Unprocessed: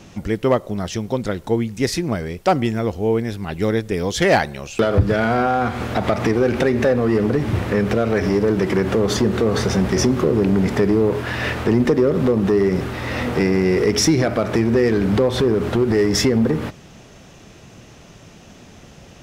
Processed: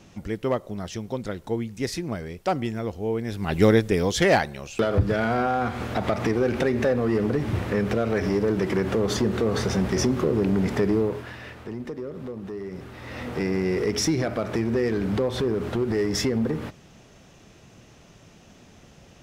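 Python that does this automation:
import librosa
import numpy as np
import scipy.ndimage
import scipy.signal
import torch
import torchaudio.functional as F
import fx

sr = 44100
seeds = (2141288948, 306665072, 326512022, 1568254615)

y = fx.gain(x, sr, db=fx.line((3.18, -8.0), (3.59, 3.5), (4.48, -5.5), (10.99, -5.5), (11.45, -18.0), (12.64, -18.0), (13.52, -7.5)))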